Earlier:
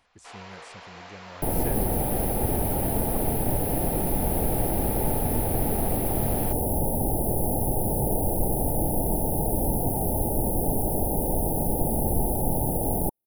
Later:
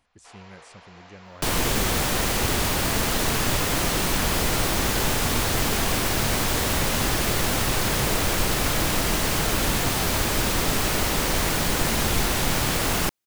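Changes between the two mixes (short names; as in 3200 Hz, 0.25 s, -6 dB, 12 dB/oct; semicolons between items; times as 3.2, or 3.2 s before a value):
first sound -5.0 dB; second sound: remove brick-wall FIR band-stop 920–9500 Hz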